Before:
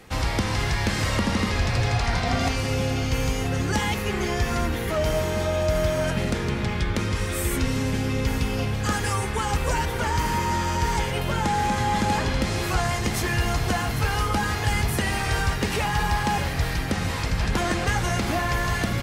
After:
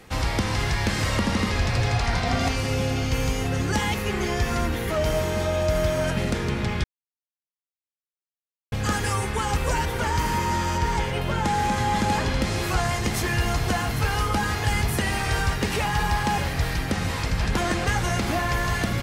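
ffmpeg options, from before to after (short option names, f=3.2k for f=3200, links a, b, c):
-filter_complex "[0:a]asettb=1/sr,asplit=3[a][b][c];[a]atrim=end=10.784[d];[b]atrim=start=10.78:end=11.45,asetpts=PTS-STARTPTS,afade=t=in:d=0.004:c=qsin,afade=t=out:st=0.666:d=0.004:c=qsin,highshelf=f=5.7k:g=-7[e];[c]atrim=start=11.446[f];[d][e]acrossfade=d=0.004:c1=hsin:c2=qsin[g];[g][f]acrossfade=d=0.004:c1=qsin:c2=hsin,asplit=3[h][i][j];[h]atrim=end=6.84,asetpts=PTS-STARTPTS,afade=t=out:st=6.836:d=0.004:c=hsin[k];[i]atrim=start=6.84:end=8.72,asetpts=PTS-STARTPTS,volume=0[l];[j]atrim=start=8.72,asetpts=PTS-STARTPTS,afade=t=in:d=0.004:c=hsin[m];[k][l][m]concat=n=3:v=0:a=1"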